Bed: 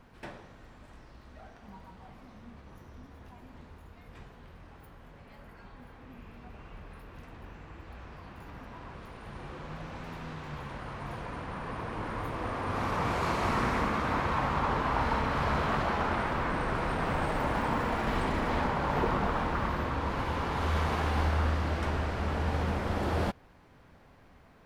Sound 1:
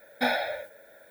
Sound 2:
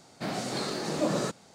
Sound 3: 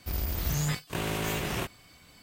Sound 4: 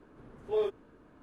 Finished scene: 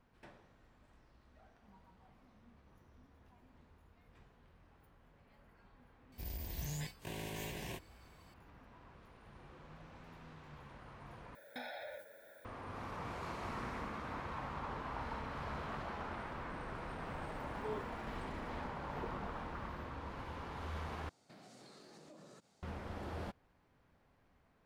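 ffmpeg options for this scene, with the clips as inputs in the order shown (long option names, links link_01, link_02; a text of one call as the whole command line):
ffmpeg -i bed.wav -i cue0.wav -i cue1.wav -i cue2.wav -i cue3.wav -filter_complex "[0:a]volume=-14dB[link_01];[3:a]asuperstop=centerf=1300:order=4:qfactor=2.8[link_02];[1:a]acompressor=threshold=-38dB:ratio=6:attack=3.2:release=140:knee=1:detection=peak[link_03];[2:a]acompressor=threshold=-39dB:ratio=6:attack=3.2:release=140:knee=1:detection=peak[link_04];[link_01]asplit=3[link_05][link_06][link_07];[link_05]atrim=end=11.354[link_08];[link_03]atrim=end=1.1,asetpts=PTS-STARTPTS,volume=-5.5dB[link_09];[link_06]atrim=start=12.446:end=21.094[link_10];[link_04]atrim=end=1.54,asetpts=PTS-STARTPTS,volume=-16dB[link_11];[link_07]atrim=start=22.626[link_12];[link_02]atrim=end=2.22,asetpts=PTS-STARTPTS,volume=-12.5dB,afade=type=in:duration=0.004:curve=hsin,afade=type=out:start_time=2.216:duration=0.004:curve=hsin,adelay=6120[link_13];[4:a]atrim=end=1.22,asetpts=PTS-STARTPTS,volume=-14.5dB,afade=type=in:duration=0.004:curve=hsin,afade=type=out:start_time=1.216:duration=0.004:curve=hsin,adelay=17120[link_14];[link_08][link_09]acrossfade=duration=0.004:curve1=hsin:curve2=hsin[link_15];[link_15][link_10]acrossfade=duration=0.004:curve1=hsin:curve2=hsin[link_16];[link_16][link_11]acrossfade=duration=0.004:curve1=hsin:curve2=hsin[link_17];[link_17][link_12]acrossfade=duration=0.004:curve1=hsin:curve2=hsin[link_18];[link_18][link_13][link_14]amix=inputs=3:normalize=0" out.wav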